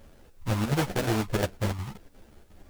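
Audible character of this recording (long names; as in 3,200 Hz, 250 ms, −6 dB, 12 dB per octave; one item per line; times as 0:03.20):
aliases and images of a low sample rate 1,100 Hz, jitter 20%
chopped level 2.8 Hz, depth 65%, duty 80%
a quantiser's noise floor 12 bits, dither triangular
a shimmering, thickened sound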